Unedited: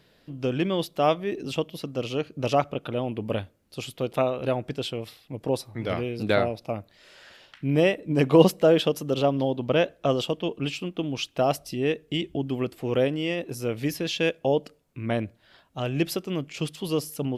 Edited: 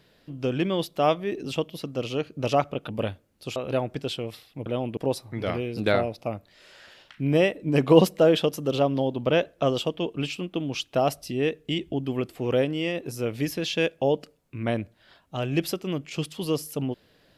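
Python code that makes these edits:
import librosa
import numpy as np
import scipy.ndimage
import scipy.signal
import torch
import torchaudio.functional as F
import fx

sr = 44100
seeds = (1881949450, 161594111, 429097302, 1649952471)

y = fx.edit(x, sr, fx.move(start_s=2.89, length_s=0.31, to_s=5.4),
    fx.cut(start_s=3.87, length_s=0.43), tone=tone)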